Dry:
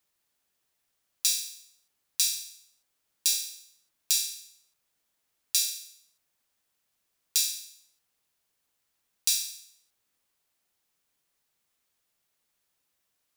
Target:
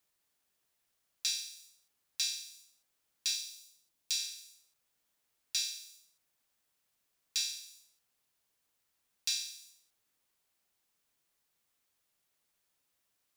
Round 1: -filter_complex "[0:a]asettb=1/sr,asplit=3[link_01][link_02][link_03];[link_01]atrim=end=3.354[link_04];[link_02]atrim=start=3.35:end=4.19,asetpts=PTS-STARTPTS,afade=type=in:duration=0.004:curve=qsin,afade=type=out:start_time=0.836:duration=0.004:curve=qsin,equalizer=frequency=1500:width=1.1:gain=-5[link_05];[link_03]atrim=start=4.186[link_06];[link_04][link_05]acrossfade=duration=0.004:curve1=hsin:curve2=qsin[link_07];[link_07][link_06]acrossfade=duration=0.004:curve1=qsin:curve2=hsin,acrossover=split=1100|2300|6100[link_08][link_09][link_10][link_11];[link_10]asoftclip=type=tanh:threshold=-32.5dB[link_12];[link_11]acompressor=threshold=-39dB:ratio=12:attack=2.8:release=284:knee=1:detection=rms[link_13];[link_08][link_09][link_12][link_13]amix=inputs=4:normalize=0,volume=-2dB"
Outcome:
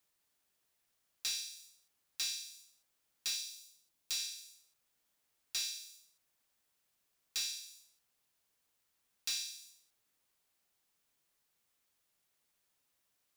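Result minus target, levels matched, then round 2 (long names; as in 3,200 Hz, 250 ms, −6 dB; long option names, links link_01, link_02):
soft clipping: distortion +11 dB
-filter_complex "[0:a]asettb=1/sr,asplit=3[link_01][link_02][link_03];[link_01]atrim=end=3.354[link_04];[link_02]atrim=start=3.35:end=4.19,asetpts=PTS-STARTPTS,afade=type=in:duration=0.004:curve=qsin,afade=type=out:start_time=0.836:duration=0.004:curve=qsin,equalizer=frequency=1500:width=1.1:gain=-5[link_05];[link_03]atrim=start=4.186[link_06];[link_04][link_05]acrossfade=duration=0.004:curve1=hsin:curve2=qsin[link_07];[link_07][link_06]acrossfade=duration=0.004:curve1=qsin:curve2=hsin,acrossover=split=1100|2300|6100[link_08][link_09][link_10][link_11];[link_10]asoftclip=type=tanh:threshold=-21.5dB[link_12];[link_11]acompressor=threshold=-39dB:ratio=12:attack=2.8:release=284:knee=1:detection=rms[link_13];[link_08][link_09][link_12][link_13]amix=inputs=4:normalize=0,volume=-2dB"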